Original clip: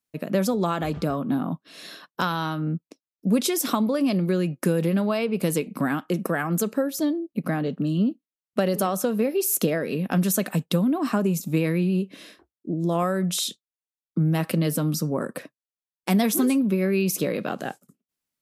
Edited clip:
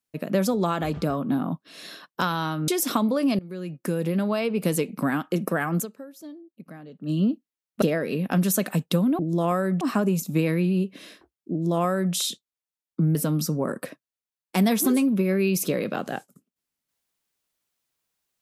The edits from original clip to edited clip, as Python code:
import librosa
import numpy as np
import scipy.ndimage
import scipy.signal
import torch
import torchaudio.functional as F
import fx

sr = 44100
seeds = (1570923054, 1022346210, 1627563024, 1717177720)

y = fx.edit(x, sr, fx.cut(start_s=2.68, length_s=0.78),
    fx.fade_in_from(start_s=4.17, length_s=1.36, curve='qsin', floor_db=-21.5),
    fx.fade_down_up(start_s=6.58, length_s=1.3, db=-17.0, fade_s=0.38, curve='exp'),
    fx.cut(start_s=8.6, length_s=1.02),
    fx.duplicate(start_s=12.7, length_s=0.62, to_s=10.99),
    fx.cut(start_s=14.33, length_s=0.35), tone=tone)